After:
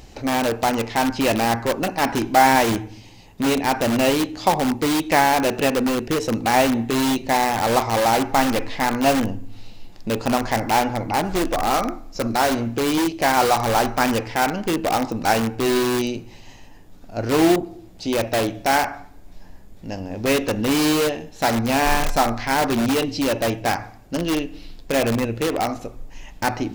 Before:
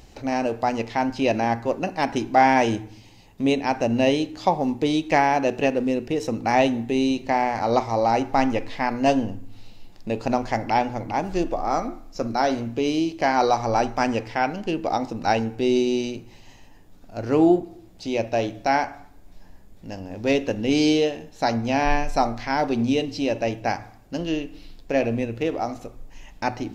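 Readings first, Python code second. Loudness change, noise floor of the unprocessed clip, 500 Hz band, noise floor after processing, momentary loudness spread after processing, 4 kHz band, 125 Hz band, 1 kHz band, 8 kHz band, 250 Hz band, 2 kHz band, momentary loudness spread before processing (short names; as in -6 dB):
+2.5 dB, -48 dBFS, +1.5 dB, -43 dBFS, 9 LU, +6.5 dB, +3.0 dB, +2.5 dB, +11.5 dB, +2.0 dB, +4.5 dB, 11 LU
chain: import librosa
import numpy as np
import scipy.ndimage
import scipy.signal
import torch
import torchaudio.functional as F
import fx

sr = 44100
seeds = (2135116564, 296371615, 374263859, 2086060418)

p1 = fx.dynamic_eq(x, sr, hz=1300.0, q=1.3, threshold_db=-37.0, ratio=4.0, max_db=5)
p2 = (np.mod(10.0 ** (18.5 / 20.0) * p1 + 1.0, 2.0) - 1.0) / 10.0 ** (18.5 / 20.0)
y = p1 + F.gain(torch.from_numpy(p2), -3.0).numpy()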